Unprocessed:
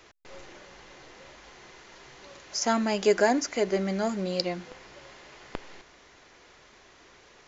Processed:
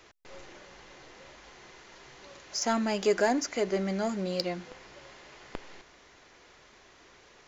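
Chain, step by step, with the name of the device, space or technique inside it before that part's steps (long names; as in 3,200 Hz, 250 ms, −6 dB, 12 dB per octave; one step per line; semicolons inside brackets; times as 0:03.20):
parallel distortion (in parallel at −8 dB: hard clipping −25.5 dBFS, distortion −6 dB)
on the sum: level −4.5 dB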